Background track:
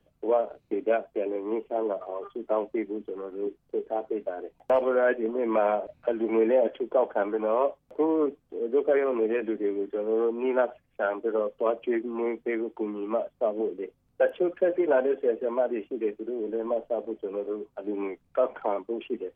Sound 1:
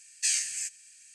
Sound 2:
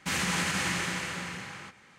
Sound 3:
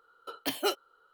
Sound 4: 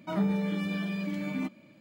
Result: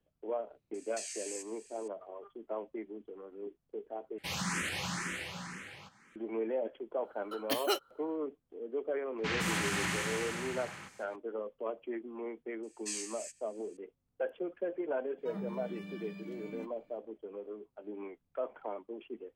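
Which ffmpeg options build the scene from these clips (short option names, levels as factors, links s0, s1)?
-filter_complex "[1:a]asplit=2[s0][s1];[2:a]asplit=2[s2][s3];[0:a]volume=0.251[s4];[s0]acompressor=threshold=0.02:ratio=6:attack=3.2:release=140:knee=1:detection=peak[s5];[s2]asplit=2[s6][s7];[s7]afreqshift=2[s8];[s6][s8]amix=inputs=2:normalize=1[s9];[s3]acrossover=split=5100[s10][s11];[s11]adelay=160[s12];[s10][s12]amix=inputs=2:normalize=0[s13];[s4]asplit=2[s14][s15];[s14]atrim=end=4.184[s16];[s9]atrim=end=1.98,asetpts=PTS-STARTPTS,volume=0.668[s17];[s15]atrim=start=6.156[s18];[s5]atrim=end=1.14,asetpts=PTS-STARTPTS,volume=0.562,afade=t=in:d=0.004:c=hsin,afade=t=out:st=1.136:d=0.004:c=hsin,adelay=740[s19];[3:a]atrim=end=1.13,asetpts=PTS-STARTPTS,volume=0.794,afade=t=in:d=0.004:c=hsin,afade=t=out:st=1.126:d=0.004:c=hsin,adelay=7040[s20];[s13]atrim=end=1.98,asetpts=PTS-STARTPTS,volume=0.668,afade=t=in:d=0.004:c=hsin,afade=t=out:st=1.976:d=0.004:c=hsin,adelay=9180[s21];[s1]atrim=end=1.14,asetpts=PTS-STARTPTS,volume=0.237,afade=t=in:d=0.004:c=hsin,afade=t=out:st=1.136:d=0.004:c=hsin,adelay=12630[s22];[4:a]atrim=end=1.8,asetpts=PTS-STARTPTS,volume=0.211,afade=t=in:d=0.004:c=hsin,afade=t=out:st=1.796:d=0.004:c=hsin,adelay=15180[s23];[s16][s17]acrossfade=d=0.004:c1=hsin:c2=hsin[s24];[s24][s18]acrossfade=d=0.004:c1=hsin:c2=hsin[s25];[s25][s19][s20][s21][s22][s23]amix=inputs=6:normalize=0"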